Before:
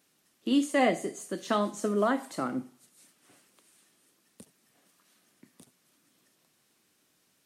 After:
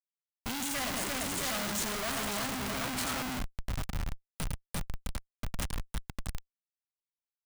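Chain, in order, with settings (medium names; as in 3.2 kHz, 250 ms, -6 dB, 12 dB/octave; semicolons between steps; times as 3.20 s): multi-tap echo 55/106/163/345/662/751 ms -19/-7.5/-20/-4.5/-11.5/-11.5 dB; rotary cabinet horn 1.2 Hz, later 7.5 Hz, at 5.94 s; in parallel at -4 dB: sample-rate reducer 1.8 kHz, jitter 0%; on the sum: treble shelf 4.2 kHz +10.5 dB; de-hum 119.5 Hz, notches 3; Schmitt trigger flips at -47.5 dBFS; peaking EQ 360 Hz -11 dB 1.6 oct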